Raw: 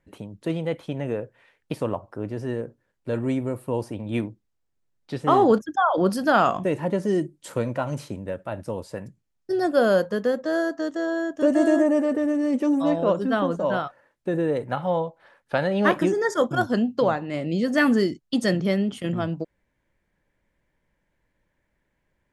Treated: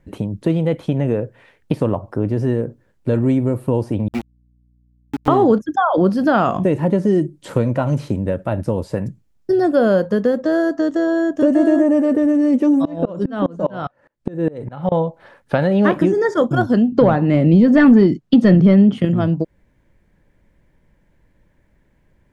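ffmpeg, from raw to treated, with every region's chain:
-filter_complex "[0:a]asettb=1/sr,asplit=3[s0][s1][s2];[s0]atrim=end=4.084[s3];[s1]atrim=start=4.08:end=5.28,asetpts=PTS-STARTPTS,afade=t=in:d=0.004:c=qsin,afade=t=out:st=1.196:d=0.004:c=qsin,asplit=3[s4][s5][s6];[s4]bandpass=f=270:t=q:w=8,volume=1[s7];[s5]bandpass=f=2290:t=q:w=8,volume=0.501[s8];[s6]bandpass=f=3010:t=q:w=8,volume=0.355[s9];[s7][s8][s9]amix=inputs=3:normalize=0,aeval=exprs='val(0)*gte(abs(val(0)),0.0237)':c=same,aeval=exprs='val(0)+0.000251*(sin(2*PI*60*n/s)+sin(2*PI*2*60*n/s)/2+sin(2*PI*3*60*n/s)/3+sin(2*PI*4*60*n/s)/4+sin(2*PI*5*60*n/s)/5)':c=same[s10];[s2]atrim=start=5.276[s11];[s3][s10]acrossfade=d=0.004:c1=hsin:c2=qsin[s12];[s12][s11]acrossfade=d=0.004:c1=qsin:c2=hsin,asettb=1/sr,asplit=3[s13][s14][s15];[s13]atrim=end=12.854[s16];[s14]atrim=start=12.85:end=14.92,asetpts=PTS-STARTPTS,afade=t=in:d=0.004:c=qsin,afade=t=out:st=2.066:d=0.004:c=qsin,lowpass=9000,aeval=exprs='val(0)*pow(10,-27*if(lt(mod(-4.9*n/s,1),2*abs(-4.9)/1000),1-mod(-4.9*n/s,1)/(2*abs(-4.9)/1000),(mod(-4.9*n/s,1)-2*abs(-4.9)/1000)/(1-2*abs(-4.9)/1000))/20)':c=same[s17];[s15]atrim=start=14.916[s18];[s16][s17]acrossfade=d=0.004:c1=hsin:c2=qsin[s19];[s19][s18]acrossfade=d=0.004:c1=qsin:c2=hsin,asettb=1/sr,asplit=3[s20][s21][s22];[s20]atrim=end=16.924[s23];[s21]atrim=start=16.92:end=19.05,asetpts=PTS-STARTPTS,afade=t=in:d=0.004:c=qsin,afade=t=out:st=2.126:d=0.004:c=qsin,equalizer=f=150:w=0.57:g=12.5,asplit=2[s24][s25];[s25]highpass=f=720:p=1,volume=4.47,asoftclip=type=tanh:threshold=0.668[s26];[s24][s26]amix=inputs=2:normalize=0,lowpass=f=2900:p=1,volume=0.501[s27];[s22]atrim=start=19.046[s28];[s23][s27]acrossfade=d=0.004:c1=hsin:c2=qsin[s29];[s29][s28]acrossfade=d=0.004:c1=qsin:c2=hsin,acrossover=split=4500[s30][s31];[s31]acompressor=threshold=0.00282:ratio=4:attack=1:release=60[s32];[s30][s32]amix=inputs=2:normalize=0,lowshelf=f=460:g=10,acompressor=threshold=0.0631:ratio=2,volume=2.24"

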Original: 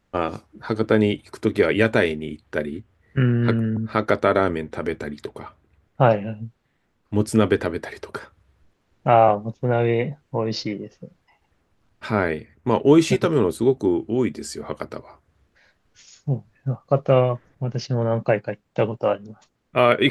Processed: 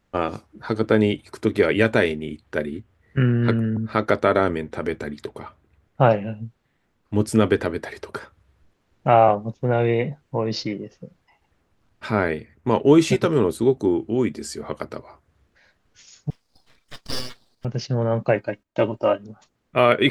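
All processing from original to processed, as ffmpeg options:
-filter_complex "[0:a]asettb=1/sr,asplit=3[s0][s1][s2];[s0]atrim=end=16.304[s3];[s1]atrim=start=16.3:end=17.65,asetpts=PTS-STARTPTS,afade=t=in:d=0.004:c=qsin,afade=t=out:st=1.346:d=0.004:c=qsin,highpass=f=2400:t=q:w=5.8,aecho=1:1:4.4:0.53,atrim=end_sample=59535,aeval=exprs='abs(val(0))':c=same[s4];[s2]atrim=start=17.646[s5];[s3][s4]acrossfade=d=0.004:c1=hsin:c2=qsin[s6];[s6][s5]acrossfade=d=0.004:c1=qsin:c2=hsin,asettb=1/sr,asplit=3[s7][s8][s9];[s7]atrim=end=18.354[s10];[s8]atrim=start=18.35:end=19.25,asetpts=PTS-STARTPTS,afade=t=in:d=0.004:c=qsin,afade=t=out:st=0.896:d=0.004:c=qsin,aecho=1:1:3.2:0.64,atrim=end_sample=39690,agate=range=0.178:threshold=0.00126:ratio=16:release=100:detection=peak[s11];[s9]atrim=start=19.246[s12];[s10][s11]acrossfade=d=0.004:c1=hsin:c2=qsin[s13];[s13][s12]acrossfade=d=0.004:c1=qsin:c2=hsin"

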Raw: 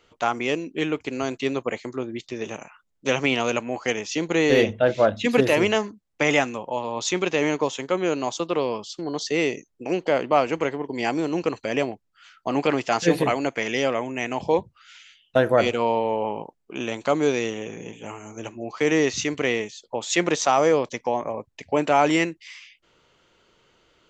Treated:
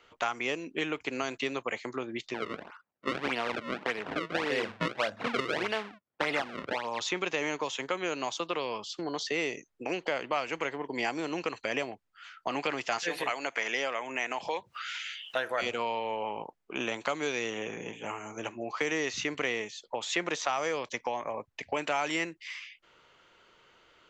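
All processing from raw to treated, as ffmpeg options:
-filter_complex "[0:a]asettb=1/sr,asplit=3[s0][s1][s2];[s0]atrim=end=2.344[s3];[s1]atrim=start=2.34:end=7,asetpts=PTS-STARTPTS,afade=t=in:d=0.004:c=qsin,afade=t=out:st=4.656:d=0.004:c=qsin,acrusher=samples=31:mix=1:aa=0.000001:lfo=1:lforange=49.6:lforate=1.7,highpass=110,lowpass=3000[s4];[s2]atrim=start=6.996[s5];[s3][s4]acrossfade=d=0.004:c1=hsin:c2=qsin[s6];[s6][s5]acrossfade=d=0.004:c1=qsin:c2=hsin,asettb=1/sr,asplit=3[s7][s8][s9];[s7]atrim=end=12.984[s10];[s8]atrim=start=12.98:end=15.62,asetpts=PTS-STARTPTS,afade=t=in:d=0.004:c=qsin,afade=t=out:st=2.636:d=0.004:c=qsin,highpass=f=690:p=1,acompressor=mode=upward:threshold=0.0447:ratio=2.5:attack=3.2:release=140:knee=2.83:detection=peak[s11];[s9]atrim=start=15.616[s12];[s10][s11]acrossfade=d=0.004:c1=hsin:c2=qsin[s13];[s13][s12]acrossfade=d=0.004:c1=qsin:c2=hsin,equalizer=f=1500:w=0.38:g=9.5,acrossover=split=100|1800|4300[s14][s15][s16][s17];[s14]acompressor=threshold=0.00126:ratio=4[s18];[s15]acompressor=threshold=0.0562:ratio=4[s19];[s16]acompressor=threshold=0.0355:ratio=4[s20];[s17]acompressor=threshold=0.0178:ratio=4[s21];[s18][s19][s20][s21]amix=inputs=4:normalize=0,volume=0.473"

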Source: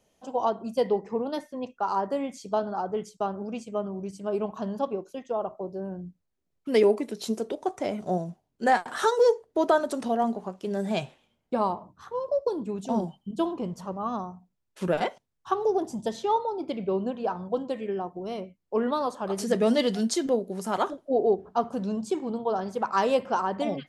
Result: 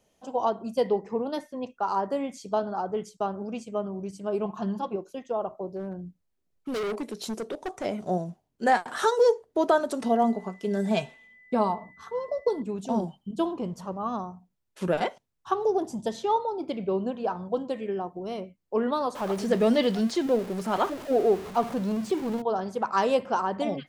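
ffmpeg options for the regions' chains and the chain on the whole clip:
-filter_complex "[0:a]asettb=1/sr,asplit=3[s0][s1][s2];[s0]atrim=end=4.454[s3];[s1]atrim=start=4.45:end=4.96,asetpts=PTS-STARTPTS,afade=t=in:d=0.004:c=qsin,afade=t=out:st=0.506:d=0.004:c=qsin,highshelf=f=5500:g=-5.5,bandreject=f=560:w=7.1,aecho=1:1:5.7:0.66,atrim=end_sample=22491[s4];[s2]atrim=start=4.956[s5];[s3][s4]acrossfade=d=0.004:c1=hsin:c2=qsin[s6];[s6][s5]acrossfade=d=0.004:c1=qsin:c2=hsin,asettb=1/sr,asplit=3[s7][s8][s9];[s7]atrim=end=5.764[s10];[s8]atrim=start=5.76:end=7.85,asetpts=PTS-STARTPTS,afade=t=in:d=0.004:c=qsin,afade=t=out:st=2.086:d=0.004:c=qsin,asubboost=boost=3:cutoff=50,volume=25.1,asoftclip=hard,volume=0.0398[s11];[s9]atrim=start=7.846[s12];[s10][s11]acrossfade=d=0.004:c1=hsin:c2=qsin[s13];[s13][s12]acrossfade=d=0.004:c1=qsin:c2=hsin,asettb=1/sr,asplit=3[s14][s15][s16];[s14]atrim=end=10.024[s17];[s15]atrim=start=10.02:end=12.62,asetpts=PTS-STARTPTS,afade=t=in:d=0.004:c=qsin,afade=t=out:st=2.596:d=0.004:c=qsin,aeval=exprs='val(0)+0.00158*sin(2*PI*2000*n/s)':c=same,aecho=1:1:4.5:0.52,atrim=end_sample=114660[s18];[s16]atrim=start=12.616[s19];[s17][s18]acrossfade=d=0.004:c1=hsin:c2=qsin[s20];[s20][s19]acrossfade=d=0.004:c1=qsin:c2=hsin,asettb=1/sr,asplit=3[s21][s22][s23];[s21]atrim=end=19.154[s24];[s22]atrim=start=19.15:end=22.42,asetpts=PTS-STARTPTS,afade=t=in:d=0.004:c=qsin,afade=t=out:st=3.266:d=0.004:c=qsin,aeval=exprs='val(0)+0.5*0.0178*sgn(val(0))':c=same,acrossover=split=4400[s25][s26];[s26]acompressor=threshold=0.00501:ratio=4:attack=1:release=60[s27];[s25][s27]amix=inputs=2:normalize=0[s28];[s23]atrim=start=22.416[s29];[s24][s28]acrossfade=d=0.004:c1=hsin:c2=qsin[s30];[s30][s29]acrossfade=d=0.004:c1=qsin:c2=hsin"

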